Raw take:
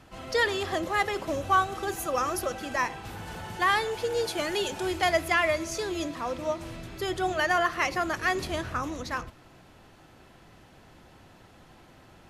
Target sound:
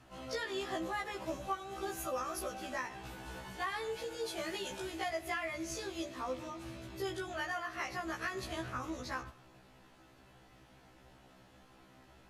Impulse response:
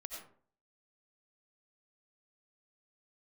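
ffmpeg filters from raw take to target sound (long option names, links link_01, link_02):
-filter_complex "[0:a]acompressor=threshold=-28dB:ratio=6,asplit=2[link_01][link_02];[1:a]atrim=start_sample=2205,lowshelf=frequency=310:gain=-10[link_03];[link_02][link_03]afir=irnorm=-1:irlink=0,volume=-12.5dB[link_04];[link_01][link_04]amix=inputs=2:normalize=0,afftfilt=real='re*1.73*eq(mod(b,3),0)':imag='im*1.73*eq(mod(b,3),0)':win_size=2048:overlap=0.75,volume=-5dB"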